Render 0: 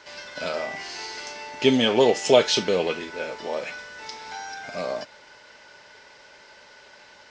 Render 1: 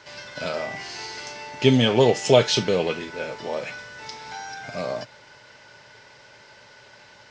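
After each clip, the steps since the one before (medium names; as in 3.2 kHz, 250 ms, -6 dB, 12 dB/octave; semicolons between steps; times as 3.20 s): peaking EQ 120 Hz +13.5 dB 0.78 oct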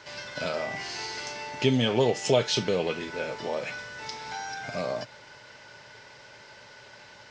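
compression 1.5:1, threshold -30 dBFS, peak gain reduction 7.5 dB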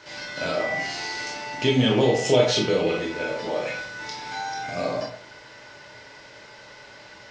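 reverberation RT60 0.50 s, pre-delay 17 ms, DRR -2 dB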